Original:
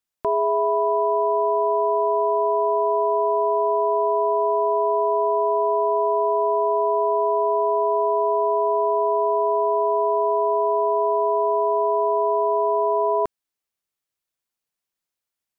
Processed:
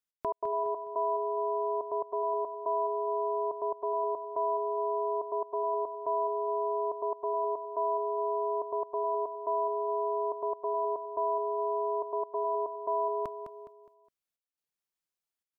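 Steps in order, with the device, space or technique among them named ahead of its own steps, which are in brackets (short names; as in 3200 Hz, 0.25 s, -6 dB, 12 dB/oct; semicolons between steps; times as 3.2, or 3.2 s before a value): trance gate with a delay (step gate "x.x.xxx..xxxxxxx" 141 bpm -60 dB; feedback echo 0.207 s, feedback 35%, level -9 dB); dynamic EQ 390 Hz, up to -6 dB, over -34 dBFS, Q 1.1; gain -7 dB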